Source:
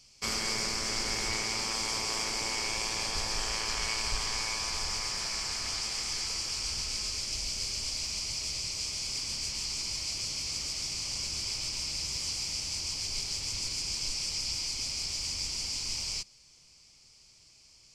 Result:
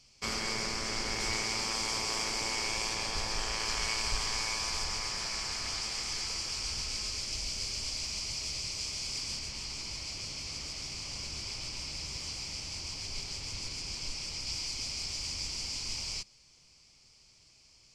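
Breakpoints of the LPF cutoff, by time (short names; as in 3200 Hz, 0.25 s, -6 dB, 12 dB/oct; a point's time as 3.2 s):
LPF 6 dB/oct
4500 Hz
from 1.2 s 9200 Hz
from 2.94 s 5600 Hz
from 3.6 s 11000 Hz
from 4.84 s 6300 Hz
from 9.39 s 3100 Hz
from 14.47 s 5200 Hz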